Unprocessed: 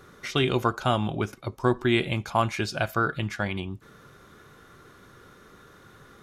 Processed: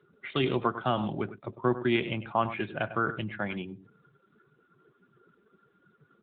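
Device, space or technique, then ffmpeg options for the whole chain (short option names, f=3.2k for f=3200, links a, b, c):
mobile call with aggressive noise cancelling: -filter_complex "[0:a]asplit=3[a][b][c];[a]afade=t=out:st=2.72:d=0.02[d];[b]lowshelf=f=64:g=4,afade=t=in:st=2.72:d=0.02,afade=t=out:st=3.37:d=0.02[e];[c]afade=t=in:st=3.37:d=0.02[f];[d][e][f]amix=inputs=3:normalize=0,highpass=f=120:w=0.5412,highpass=f=120:w=1.3066,aecho=1:1:100:0.237,afftdn=nr=19:nf=-42,volume=-3dB" -ar 8000 -c:a libopencore_amrnb -b:a 10200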